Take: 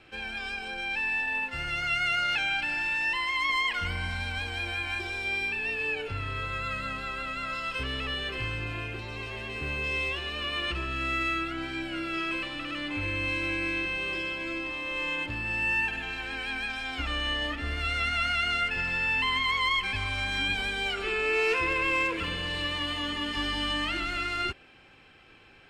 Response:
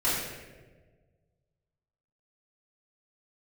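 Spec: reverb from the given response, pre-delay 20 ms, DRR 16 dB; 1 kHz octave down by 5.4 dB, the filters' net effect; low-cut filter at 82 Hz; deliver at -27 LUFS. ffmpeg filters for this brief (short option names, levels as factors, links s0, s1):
-filter_complex "[0:a]highpass=82,equalizer=f=1000:t=o:g=-7.5,asplit=2[s0][s1];[1:a]atrim=start_sample=2205,adelay=20[s2];[s1][s2]afir=irnorm=-1:irlink=0,volume=0.0422[s3];[s0][s3]amix=inputs=2:normalize=0,volume=1.41"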